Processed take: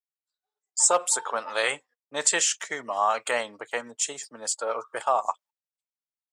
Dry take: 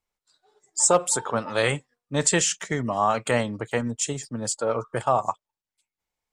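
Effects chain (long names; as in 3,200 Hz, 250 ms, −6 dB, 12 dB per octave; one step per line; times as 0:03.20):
noise gate −48 dBFS, range −24 dB
high-pass filter 630 Hz 12 dB per octave
0:01.75–0:04.35: one half of a high-frequency compander decoder only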